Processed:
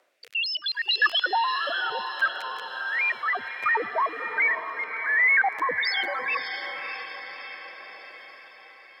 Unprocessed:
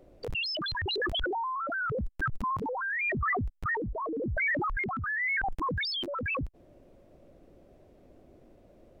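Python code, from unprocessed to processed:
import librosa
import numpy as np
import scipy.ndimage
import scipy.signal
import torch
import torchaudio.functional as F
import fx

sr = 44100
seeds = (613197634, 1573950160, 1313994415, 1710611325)

p1 = fx.filter_lfo_highpass(x, sr, shape='sine', hz=0.47, low_hz=620.0, high_hz=2700.0, q=1.5)
p2 = fx.rotary(p1, sr, hz=0.7)
p3 = p2 + fx.echo_diffused(p2, sr, ms=610, feedback_pct=56, wet_db=-8.0, dry=0)
p4 = fx.echo_warbled(p3, sr, ms=105, feedback_pct=71, rate_hz=2.8, cents=107, wet_db=-23.0)
y = p4 * librosa.db_to_amplitude(7.5)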